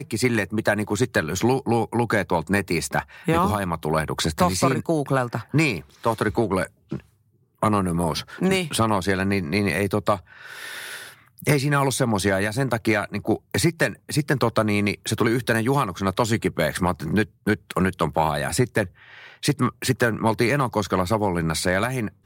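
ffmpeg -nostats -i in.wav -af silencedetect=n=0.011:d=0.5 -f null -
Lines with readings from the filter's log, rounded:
silence_start: 7.00
silence_end: 7.62 | silence_duration: 0.62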